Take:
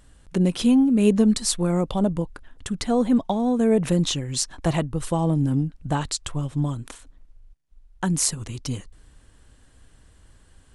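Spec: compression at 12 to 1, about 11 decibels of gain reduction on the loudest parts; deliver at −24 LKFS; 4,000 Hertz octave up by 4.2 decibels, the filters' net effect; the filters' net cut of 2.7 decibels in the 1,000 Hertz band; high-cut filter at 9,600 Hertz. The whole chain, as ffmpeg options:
ffmpeg -i in.wav -af "lowpass=9600,equalizer=frequency=1000:width_type=o:gain=-4,equalizer=frequency=4000:width_type=o:gain=5.5,acompressor=threshold=-25dB:ratio=12,volume=6.5dB" out.wav

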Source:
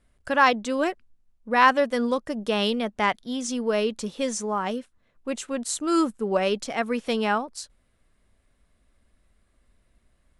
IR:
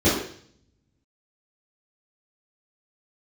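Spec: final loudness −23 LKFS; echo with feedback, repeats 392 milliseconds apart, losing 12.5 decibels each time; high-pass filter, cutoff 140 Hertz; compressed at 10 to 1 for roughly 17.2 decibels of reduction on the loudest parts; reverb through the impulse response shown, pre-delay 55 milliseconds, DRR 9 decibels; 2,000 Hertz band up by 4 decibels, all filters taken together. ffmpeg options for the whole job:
-filter_complex "[0:a]highpass=140,equalizer=frequency=2000:width_type=o:gain=5,acompressor=threshold=-28dB:ratio=10,aecho=1:1:392|784|1176:0.237|0.0569|0.0137,asplit=2[link_01][link_02];[1:a]atrim=start_sample=2205,adelay=55[link_03];[link_02][link_03]afir=irnorm=-1:irlink=0,volume=-28.5dB[link_04];[link_01][link_04]amix=inputs=2:normalize=0,volume=8.5dB"

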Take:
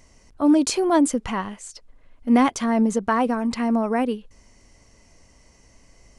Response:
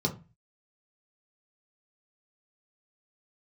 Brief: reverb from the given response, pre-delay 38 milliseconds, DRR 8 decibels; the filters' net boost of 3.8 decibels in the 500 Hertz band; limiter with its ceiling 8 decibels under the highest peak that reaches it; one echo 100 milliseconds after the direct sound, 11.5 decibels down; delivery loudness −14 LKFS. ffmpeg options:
-filter_complex "[0:a]equalizer=frequency=500:width_type=o:gain=5,alimiter=limit=-12dB:level=0:latency=1,aecho=1:1:100:0.266,asplit=2[link_01][link_02];[1:a]atrim=start_sample=2205,adelay=38[link_03];[link_02][link_03]afir=irnorm=-1:irlink=0,volume=-15dB[link_04];[link_01][link_04]amix=inputs=2:normalize=0,volume=5dB"

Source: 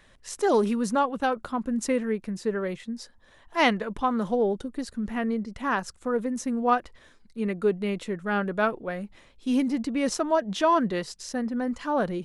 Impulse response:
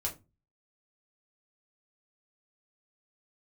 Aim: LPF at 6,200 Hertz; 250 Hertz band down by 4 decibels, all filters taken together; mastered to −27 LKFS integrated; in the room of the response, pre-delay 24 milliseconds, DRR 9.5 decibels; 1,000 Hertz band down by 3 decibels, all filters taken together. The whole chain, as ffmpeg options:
-filter_complex "[0:a]lowpass=6200,equalizer=frequency=250:width_type=o:gain=-4.5,equalizer=frequency=1000:width_type=o:gain=-3.5,asplit=2[link_01][link_02];[1:a]atrim=start_sample=2205,adelay=24[link_03];[link_02][link_03]afir=irnorm=-1:irlink=0,volume=-11.5dB[link_04];[link_01][link_04]amix=inputs=2:normalize=0,volume=2.5dB"

